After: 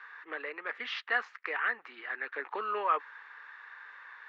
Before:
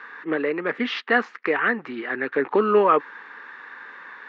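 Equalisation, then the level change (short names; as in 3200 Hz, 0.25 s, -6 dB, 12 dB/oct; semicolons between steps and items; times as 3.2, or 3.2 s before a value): HPF 850 Hz 12 dB/oct; -8.0 dB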